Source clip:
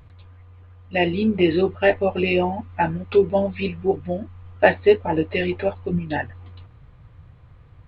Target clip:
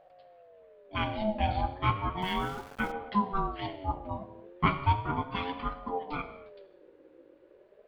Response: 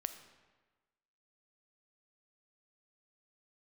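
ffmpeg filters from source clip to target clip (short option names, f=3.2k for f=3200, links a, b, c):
-filter_complex "[1:a]atrim=start_sample=2205,afade=t=out:st=0.33:d=0.01,atrim=end_sample=14994[a];[0:a][a]afir=irnorm=-1:irlink=0,asettb=1/sr,asplit=3[b][c][d];[b]atrim=end=2.224[e];[c]atrim=start=2.22:end=2.92,asetpts=PTS-STARTPTS,afade=t=in:d=0.004:c=qsin,afade=t=out:st=0.696:d=0.004:c=qsin,aeval=exprs='val(0)*gte(abs(val(0)),0.0178)':c=same[f];[d]atrim=start=2.916[g];[e][f]acrossfade=d=0.004:c1=hsin:c2=qsin[h];[h][g]acrossfade=d=0.004:c1=qsin:c2=hsin,aeval=exprs='val(0)*sin(2*PI*530*n/s+530*0.2/0.35*sin(2*PI*0.35*n/s))':c=same,volume=-6.5dB"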